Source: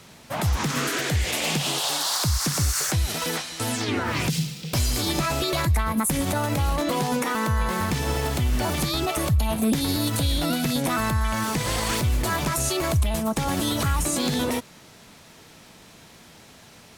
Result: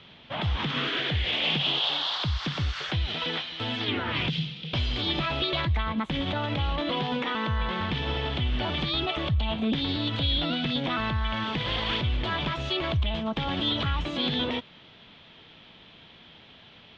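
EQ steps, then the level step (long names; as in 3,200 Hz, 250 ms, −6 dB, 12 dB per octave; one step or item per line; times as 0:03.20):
low-pass with resonance 3,300 Hz, resonance Q 5.5
high-frequency loss of the air 170 metres
−4.5 dB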